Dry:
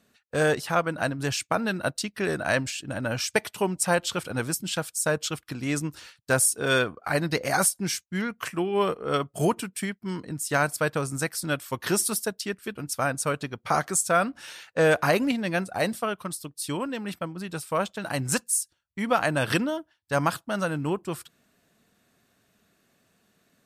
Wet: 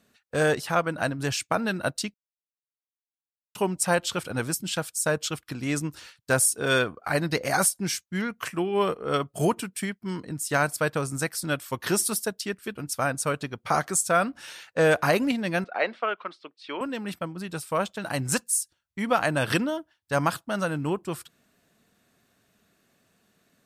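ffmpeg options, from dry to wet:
-filter_complex "[0:a]asettb=1/sr,asplit=3[a][b][c];[a]atrim=end=15.644[d];[b]atrim=start=15.64:end=16.81,asetpts=PTS-STARTPTS,afade=t=in:d=0.004:c=qsin,afade=t=out:st=1.166:d=0.004:c=qsin,highpass=f=300:w=0.5412,highpass=f=300:w=1.3066,equalizer=f=300:t=q:w=4:g=-5,equalizer=f=1.4k:t=q:w=4:g=4,equalizer=f=2.2k:t=q:w=4:g=5,lowpass=f=3.5k:w=0.5412,lowpass=f=3.5k:w=1.3066[e];[c]atrim=start=16.806[f];[d][e]acrossfade=d=0.004:c1=hsin:c2=qsin[g];[g][f]acrossfade=d=0.004:c1=qsin:c2=hsin,asplit=3[h][i][j];[h]atrim=end=2.14,asetpts=PTS-STARTPTS,afade=t=out:st=2.136:d=0.004:c=hsin[k];[i]atrim=start=2.14:end=3.55,asetpts=PTS-STARTPTS,volume=0[l];[j]atrim=start=3.55,asetpts=PTS-STARTPTS,afade=t=in:d=0.004:c=hsin[m];[k][l][m]concat=n=3:v=0:a=1"

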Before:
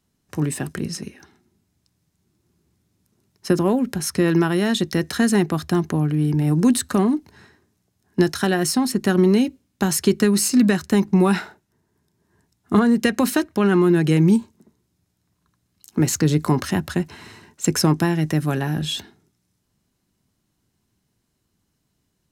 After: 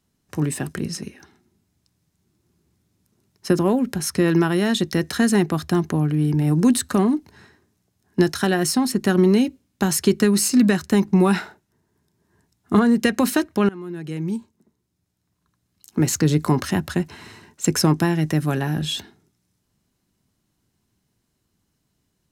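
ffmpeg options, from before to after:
-filter_complex "[0:a]asplit=2[a][b];[a]atrim=end=13.69,asetpts=PTS-STARTPTS,afade=t=out:st=13.686:d=0.004:c=hsin:silence=0.0794328[c];[b]atrim=start=13.69,asetpts=PTS-STARTPTS,afade=t=in:d=2.49:silence=0.0794328[d];[c][d]concat=n=2:v=0:a=1"

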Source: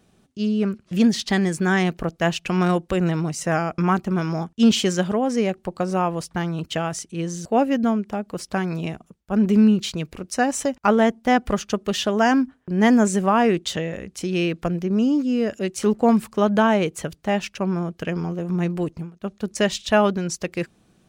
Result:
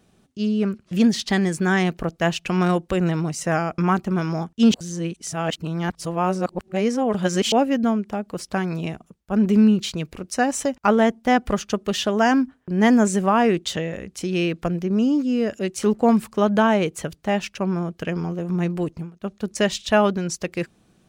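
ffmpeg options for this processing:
-filter_complex "[0:a]asplit=3[a][b][c];[a]atrim=end=4.742[d];[b]atrim=start=4.738:end=7.522,asetpts=PTS-STARTPTS,areverse[e];[c]atrim=start=7.518[f];[d][e]acrossfade=d=0.004:c1=hsin:c2=hsin[g];[g][f]acrossfade=d=0.004:c1=hsin:c2=hsin"

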